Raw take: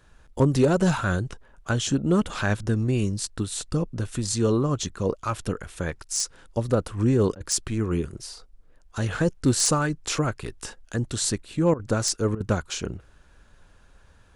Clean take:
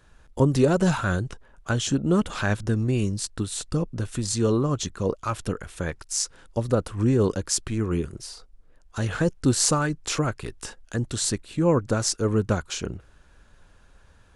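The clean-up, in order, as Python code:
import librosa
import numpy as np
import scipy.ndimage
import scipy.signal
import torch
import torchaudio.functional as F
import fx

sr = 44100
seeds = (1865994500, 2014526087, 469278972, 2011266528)

y = fx.fix_declip(x, sr, threshold_db=-11.5)
y = fx.fix_interpolate(y, sr, at_s=(7.35, 11.74, 12.35), length_ms=53.0)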